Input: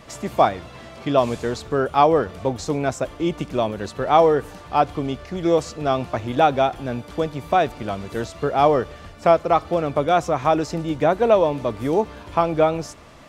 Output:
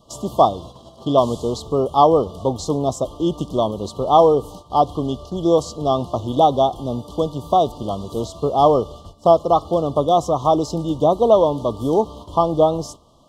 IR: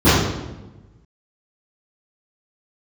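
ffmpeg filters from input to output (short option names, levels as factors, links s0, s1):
-af "asuperstop=centerf=1900:order=20:qfactor=1.1,agate=range=0.316:threshold=0.0112:ratio=16:detection=peak,volume=1.33"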